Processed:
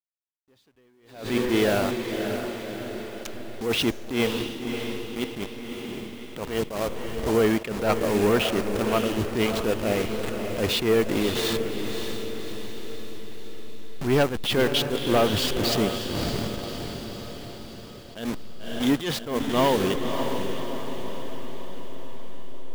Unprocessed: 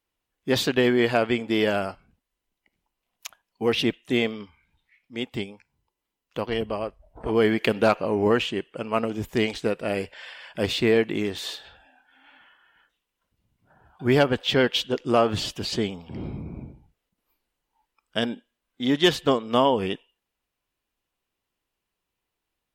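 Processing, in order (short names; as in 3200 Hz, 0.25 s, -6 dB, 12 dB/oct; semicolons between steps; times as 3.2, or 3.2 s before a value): level-crossing sampler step -29.5 dBFS; in parallel at -1.5 dB: compressor, threshold -27 dBFS, peak gain reduction 13 dB; on the sum: soft clip -13.5 dBFS, distortion -14 dB; on a send: diffused feedback echo 0.589 s, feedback 56%, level -7 dB; on the sum: attack slew limiter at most 110 dB/s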